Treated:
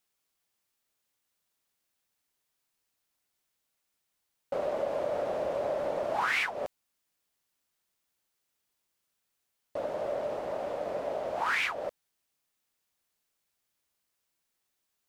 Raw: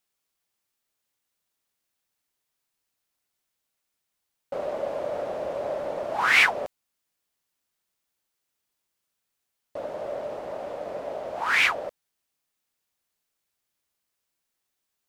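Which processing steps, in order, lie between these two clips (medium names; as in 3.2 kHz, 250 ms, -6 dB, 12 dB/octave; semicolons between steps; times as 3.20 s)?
compression 10:1, threshold -26 dBFS, peak gain reduction 12.5 dB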